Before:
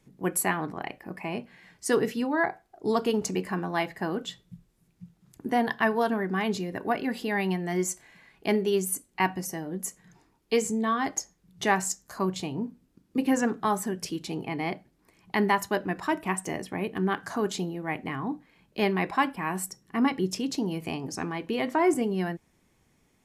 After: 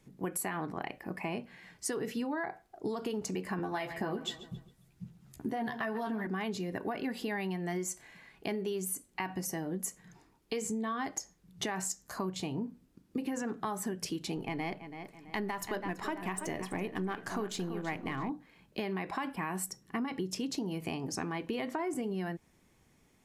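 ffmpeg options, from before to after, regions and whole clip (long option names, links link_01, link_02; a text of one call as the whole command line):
ffmpeg -i in.wav -filter_complex "[0:a]asettb=1/sr,asplit=3[link_01][link_02][link_03];[link_01]atrim=end=3.584[link_04];[link_02]atrim=start=3.58:end=6.27,asetpts=PTS-STARTPTS,afade=type=in:duration=0.004:curve=qsin,afade=type=out:start_time=2.686:duration=0.004:curve=qsin,aphaser=in_gain=1:out_gain=1:delay=1.6:decay=0.4:speed=2:type=sinusoidal,asplit=2[link_05][link_06];[link_06]adelay=14,volume=-4dB[link_07];[link_05][link_07]amix=inputs=2:normalize=0,atrim=end_sample=118629,asplit=2[link_08][link_09];[link_09]adelay=135,lowpass=frequency=4600:poles=1,volume=-18dB,asplit=2[link_10][link_11];[link_11]adelay=135,lowpass=frequency=4600:poles=1,volume=0.43,asplit=2[link_12][link_13];[link_13]adelay=135,lowpass=frequency=4600:poles=1,volume=0.43,asplit=2[link_14][link_15];[link_15]adelay=135,lowpass=frequency=4600:poles=1,volume=0.43[link_16];[link_08][link_10][link_12][link_14][link_16]amix=inputs=5:normalize=0,atrim=end_sample=118629[link_17];[link_03]atrim=start=6.266[link_18];[link_04][link_17]acrossfade=duration=0.004:curve1=hsin:curve2=qsin[link_19];[link_19][link_18]acrossfade=duration=0.004:curve1=qsin:curve2=hsin,asettb=1/sr,asplit=3[link_20][link_21][link_22];[link_20]atrim=end=14.364[link_23];[link_21]atrim=start=14.36:end=18.3,asetpts=PTS-STARTPTS,afade=type=in:duration=0.004:curve=qsin,afade=type=out:start_time=3.936:duration=0.004:curve=qsin,aeval=exprs='if(lt(val(0),0),0.708*val(0),val(0))':channel_layout=same,asplit=2[link_24][link_25];[link_25]adelay=331,lowpass=frequency=4300:poles=1,volume=-13dB,asplit=2[link_26][link_27];[link_27]adelay=331,lowpass=frequency=4300:poles=1,volume=0.42,asplit=2[link_28][link_29];[link_29]adelay=331,lowpass=frequency=4300:poles=1,volume=0.42,asplit=2[link_30][link_31];[link_31]adelay=331,lowpass=frequency=4300:poles=1,volume=0.42[link_32];[link_24][link_26][link_28][link_30][link_32]amix=inputs=5:normalize=0,atrim=end_sample=173754[link_33];[link_22]atrim=start=18.296[link_34];[link_23][link_33]acrossfade=duration=0.004:curve1=hsin:curve2=qsin[link_35];[link_35][link_34]acrossfade=duration=0.004:curve1=qsin:curve2=hsin,alimiter=limit=-19.5dB:level=0:latency=1:release=56,acompressor=threshold=-32dB:ratio=6" out.wav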